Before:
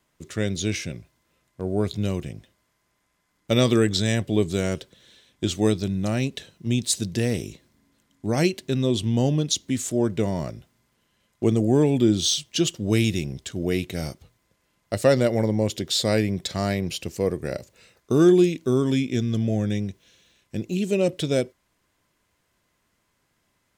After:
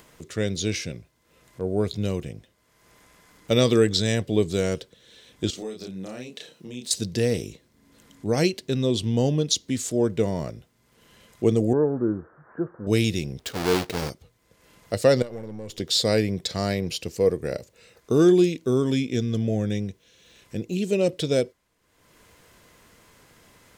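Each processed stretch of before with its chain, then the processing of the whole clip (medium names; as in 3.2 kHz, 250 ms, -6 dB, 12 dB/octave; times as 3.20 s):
5.50–6.91 s: high-pass 230 Hz + compression 5:1, threshold -34 dBFS + doubling 32 ms -2 dB
11.73–12.87 s: zero-crossing glitches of -19.5 dBFS + steep low-pass 1.6 kHz 72 dB/octave + bass shelf 360 Hz -7.5 dB
13.39–14.10 s: square wave that keeps the level + tone controls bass -7 dB, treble -2 dB
15.22–15.80 s: partial rectifier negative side -7 dB + compression 16:1, threshold -31 dBFS
whole clip: peaking EQ 470 Hz +7.5 dB 0.23 oct; upward compressor, threshold -38 dBFS; dynamic bell 4.7 kHz, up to +5 dB, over -46 dBFS, Q 2.2; trim -1.5 dB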